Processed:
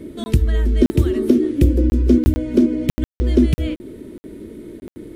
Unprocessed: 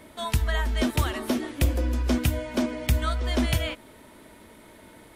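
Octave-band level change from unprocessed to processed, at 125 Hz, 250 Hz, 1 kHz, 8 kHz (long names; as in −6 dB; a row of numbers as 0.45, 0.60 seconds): +7.5 dB, +12.5 dB, −7.0 dB, can't be measured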